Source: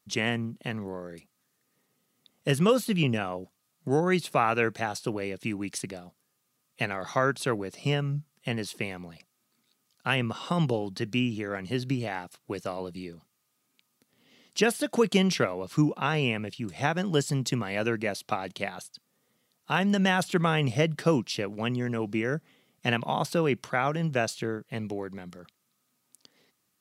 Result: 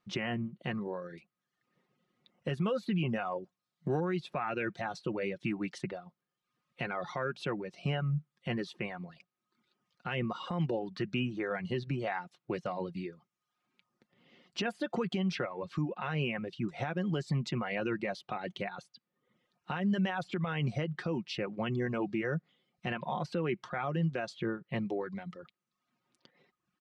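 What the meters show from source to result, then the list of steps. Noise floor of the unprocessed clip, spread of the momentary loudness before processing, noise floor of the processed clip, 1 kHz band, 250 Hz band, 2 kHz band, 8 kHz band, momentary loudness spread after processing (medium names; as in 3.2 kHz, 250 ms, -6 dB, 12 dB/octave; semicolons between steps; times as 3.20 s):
-76 dBFS, 12 LU, under -85 dBFS, -7.5 dB, -5.5 dB, -7.5 dB, -17.5 dB, 9 LU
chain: low-pass 2.8 kHz 12 dB/octave; reverb removal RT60 0.71 s; comb 5.6 ms, depth 47%; compression, threshold -25 dBFS, peak gain reduction 9.5 dB; peak limiter -23.5 dBFS, peak gain reduction 10 dB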